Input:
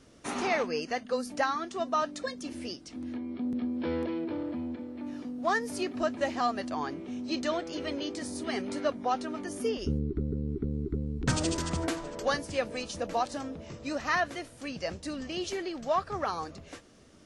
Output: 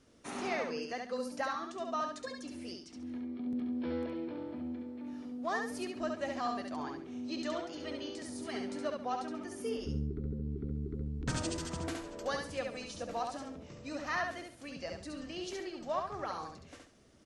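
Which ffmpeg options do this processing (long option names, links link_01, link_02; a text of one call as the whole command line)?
ffmpeg -i in.wav -af "aecho=1:1:69|138|207|276:0.631|0.17|0.046|0.0124,volume=-8dB" out.wav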